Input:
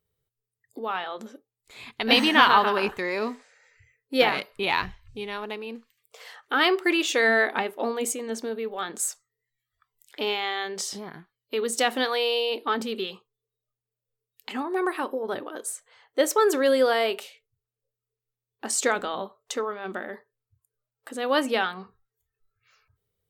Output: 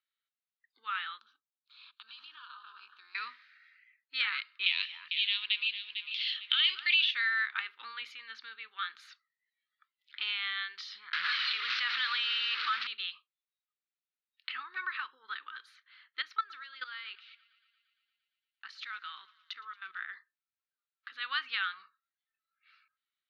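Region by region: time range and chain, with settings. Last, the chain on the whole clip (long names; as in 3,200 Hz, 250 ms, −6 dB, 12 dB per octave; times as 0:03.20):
0:01.19–0:03.15: amplitude modulation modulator 260 Hz, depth 55% + downward compressor 16 to 1, threshold −35 dBFS + phaser with its sweep stopped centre 540 Hz, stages 6
0:04.66–0:07.11: de-essing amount 85% + high shelf with overshoot 2,100 Hz +13 dB, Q 3 + delay that swaps between a low-pass and a high-pass 225 ms, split 1,600 Hz, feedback 60%, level −9 dB
0:11.13–0:12.87: linear delta modulator 32 kbit/s, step −25 dBFS + envelope flattener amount 70%
0:16.22–0:19.99: output level in coarse steps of 18 dB + feedback echo with a high-pass in the loop 115 ms, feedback 77%, high-pass 730 Hz, level −22 dB
whole clip: elliptic band-pass filter 1,300–4,200 Hz, stop band 40 dB; downward compressor 2 to 1, threshold −31 dBFS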